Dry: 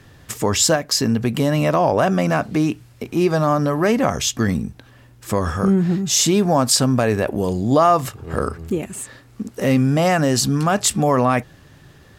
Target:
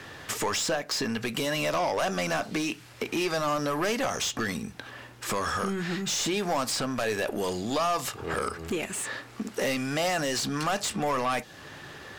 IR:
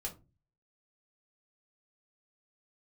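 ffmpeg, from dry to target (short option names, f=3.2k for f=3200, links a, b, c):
-filter_complex "[0:a]acrossover=split=1300|3400[a][b][c];[a]acompressor=threshold=-30dB:ratio=4[d];[b]acompressor=threshold=-41dB:ratio=4[e];[c]acompressor=threshold=-29dB:ratio=4[f];[d][e][f]amix=inputs=3:normalize=0,asplit=2[g][h];[h]highpass=f=720:p=1,volume=22dB,asoftclip=type=tanh:threshold=-11.5dB[i];[g][i]amix=inputs=2:normalize=0,lowpass=f=3.7k:p=1,volume=-6dB,asplit=2[j][k];[1:a]atrim=start_sample=2205[l];[k][l]afir=irnorm=-1:irlink=0,volume=-15dB[m];[j][m]amix=inputs=2:normalize=0,volume=-6.5dB"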